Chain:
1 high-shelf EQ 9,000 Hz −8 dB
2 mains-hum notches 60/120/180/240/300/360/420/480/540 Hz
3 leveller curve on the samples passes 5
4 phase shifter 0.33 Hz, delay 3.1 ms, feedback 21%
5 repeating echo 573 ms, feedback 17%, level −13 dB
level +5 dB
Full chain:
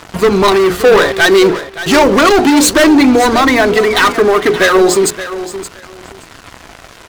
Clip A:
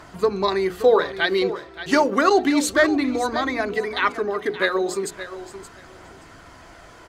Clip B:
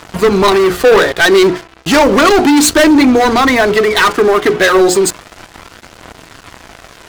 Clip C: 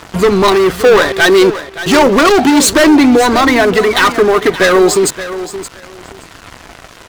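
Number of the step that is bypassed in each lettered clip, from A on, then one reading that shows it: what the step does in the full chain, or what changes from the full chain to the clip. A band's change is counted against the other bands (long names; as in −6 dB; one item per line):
3, change in crest factor +8.5 dB
5, change in momentary loudness spread −7 LU
2, change in momentary loudness spread +1 LU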